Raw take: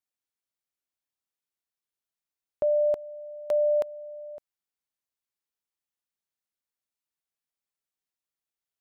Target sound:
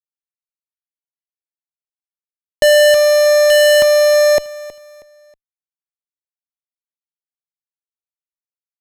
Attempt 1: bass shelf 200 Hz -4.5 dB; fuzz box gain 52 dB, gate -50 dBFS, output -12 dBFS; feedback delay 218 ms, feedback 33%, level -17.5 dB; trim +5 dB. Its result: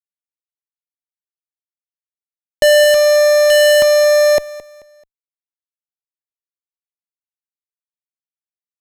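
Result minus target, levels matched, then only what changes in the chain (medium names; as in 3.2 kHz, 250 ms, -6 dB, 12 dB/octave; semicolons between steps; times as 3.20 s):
echo 101 ms early
change: feedback delay 319 ms, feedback 33%, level -17.5 dB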